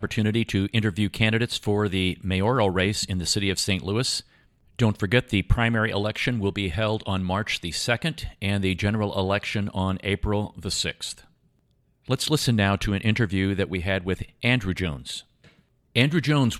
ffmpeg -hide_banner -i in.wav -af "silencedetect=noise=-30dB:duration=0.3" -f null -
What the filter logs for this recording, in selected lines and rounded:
silence_start: 4.20
silence_end: 4.79 | silence_duration: 0.59
silence_start: 11.12
silence_end: 12.09 | silence_duration: 0.97
silence_start: 15.19
silence_end: 15.96 | silence_duration: 0.77